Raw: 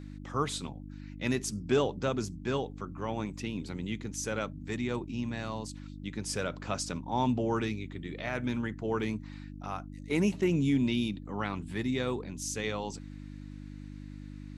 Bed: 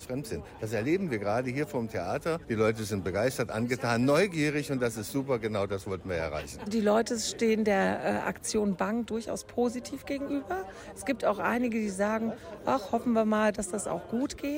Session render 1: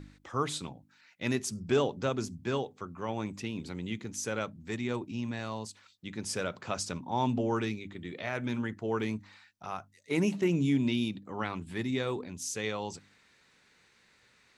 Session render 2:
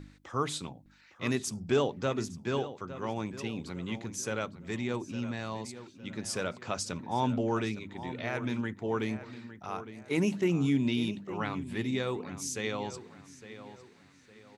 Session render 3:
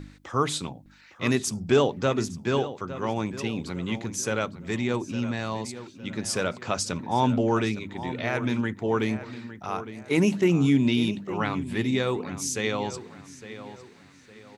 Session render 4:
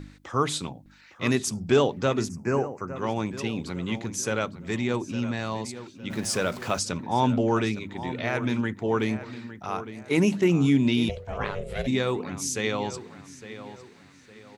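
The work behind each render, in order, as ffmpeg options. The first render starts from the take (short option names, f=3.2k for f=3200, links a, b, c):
-af "bandreject=f=50:t=h:w=4,bandreject=f=100:t=h:w=4,bandreject=f=150:t=h:w=4,bandreject=f=200:t=h:w=4,bandreject=f=250:t=h:w=4,bandreject=f=300:t=h:w=4"
-filter_complex "[0:a]asplit=2[a][b];[b]adelay=859,lowpass=f=3.5k:p=1,volume=-13dB,asplit=2[c][d];[d]adelay=859,lowpass=f=3.5k:p=1,volume=0.38,asplit=2[e][f];[f]adelay=859,lowpass=f=3.5k:p=1,volume=0.38,asplit=2[g][h];[h]adelay=859,lowpass=f=3.5k:p=1,volume=0.38[i];[a][c][e][g][i]amix=inputs=5:normalize=0"
-af "volume=6.5dB"
-filter_complex "[0:a]asettb=1/sr,asplit=3[a][b][c];[a]atrim=end=2.294[d];[b]atrim=start=2.29:end=2.96,asetpts=PTS-STARTPTS,afade=t=in:d=0.004:c=qsin,afade=t=out:st=0.666:d=0.004:c=qsin,asuperstop=centerf=3500:order=4:qfactor=1.2[e];[c]atrim=start=2.956[f];[d][e]acrossfade=d=0.004:c1=hsin:c2=qsin[g];[g][f]acrossfade=d=0.004:c1=qsin:c2=hsin,asettb=1/sr,asplit=3[h][i][j];[h]atrim=end=6.104[k];[i]atrim=start=6.1:end=6.79,asetpts=PTS-STARTPTS,afade=t=in:d=0.004:c=qsin,afade=t=out:st=0.686:d=0.004:c=qsin,aeval=exprs='val(0)+0.5*0.0126*sgn(val(0))':c=same[l];[j]atrim=start=6.786[m];[k][l]acrossfade=d=0.004:c1=hsin:c2=qsin[n];[n][m]acrossfade=d=0.004:c1=qsin:c2=hsin,asplit=3[o][p][q];[o]afade=t=out:st=11.08:d=0.02[r];[p]aeval=exprs='val(0)*sin(2*PI*290*n/s)':c=same,afade=t=in:st=11.08:d=0.02,afade=t=out:st=11.86:d=0.02[s];[q]afade=t=in:st=11.86:d=0.02[t];[r][s][t]amix=inputs=3:normalize=0"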